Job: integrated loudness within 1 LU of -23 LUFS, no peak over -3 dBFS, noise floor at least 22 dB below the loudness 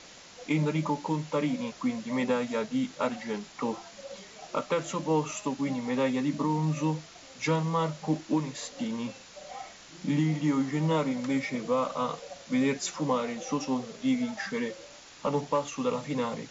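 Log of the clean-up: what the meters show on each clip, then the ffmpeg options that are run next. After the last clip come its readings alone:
noise floor -50 dBFS; noise floor target -53 dBFS; loudness -30.5 LUFS; peak -17.0 dBFS; loudness target -23.0 LUFS
-> -af "afftdn=nr=6:nf=-50"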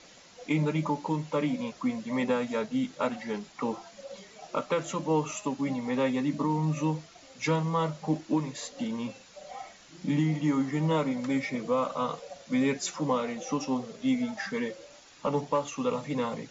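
noise floor -54 dBFS; loudness -30.5 LUFS; peak -17.0 dBFS; loudness target -23.0 LUFS
-> -af "volume=7.5dB"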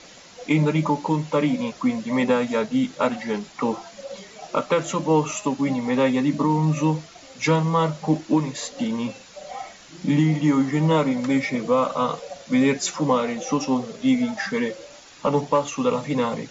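loudness -23.0 LUFS; peak -9.5 dBFS; noise floor -46 dBFS

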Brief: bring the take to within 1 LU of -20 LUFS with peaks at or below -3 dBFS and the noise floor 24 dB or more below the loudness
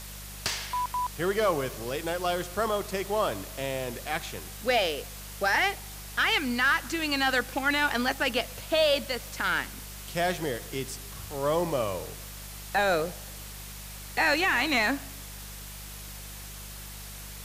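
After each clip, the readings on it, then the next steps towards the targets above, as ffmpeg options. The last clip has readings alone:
hum 50 Hz; harmonics up to 200 Hz; hum level -42 dBFS; noise floor -42 dBFS; noise floor target -52 dBFS; loudness -28.0 LUFS; peak -14.0 dBFS; loudness target -20.0 LUFS
-> -af "bandreject=f=50:t=h:w=4,bandreject=f=100:t=h:w=4,bandreject=f=150:t=h:w=4,bandreject=f=200:t=h:w=4"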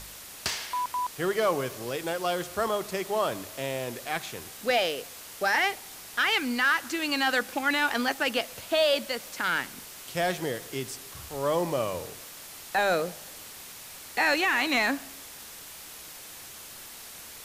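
hum none; noise floor -45 dBFS; noise floor target -52 dBFS
-> -af "afftdn=nr=7:nf=-45"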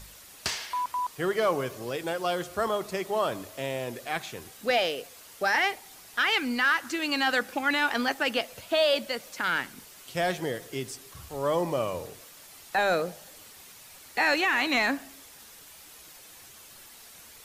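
noise floor -50 dBFS; noise floor target -52 dBFS
-> -af "afftdn=nr=6:nf=-50"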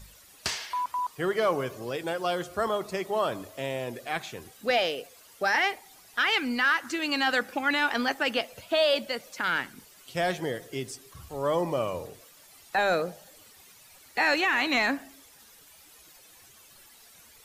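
noise floor -55 dBFS; loudness -28.0 LUFS; peak -14.5 dBFS; loudness target -20.0 LUFS
-> -af "volume=8dB"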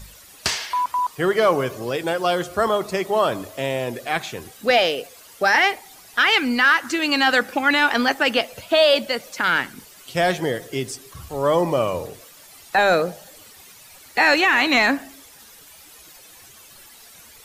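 loudness -20.0 LUFS; peak -6.5 dBFS; noise floor -47 dBFS

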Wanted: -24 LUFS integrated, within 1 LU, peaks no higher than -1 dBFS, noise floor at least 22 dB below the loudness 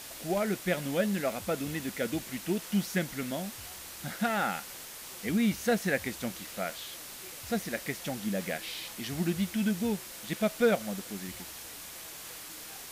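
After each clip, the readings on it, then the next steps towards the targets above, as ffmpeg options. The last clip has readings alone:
noise floor -45 dBFS; noise floor target -55 dBFS; loudness -33.0 LUFS; peak -15.0 dBFS; loudness target -24.0 LUFS
-> -af "afftdn=nr=10:nf=-45"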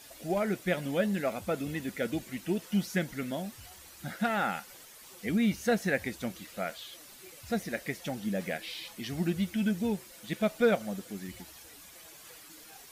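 noise floor -52 dBFS; noise floor target -55 dBFS
-> -af "afftdn=nr=6:nf=-52"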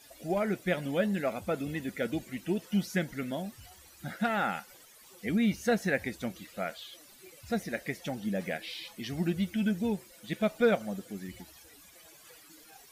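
noise floor -56 dBFS; loudness -32.5 LUFS; peak -15.0 dBFS; loudness target -24.0 LUFS
-> -af "volume=8.5dB"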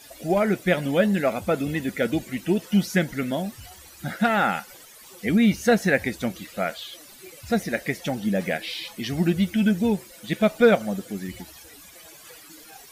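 loudness -24.0 LUFS; peak -6.5 dBFS; noise floor -47 dBFS

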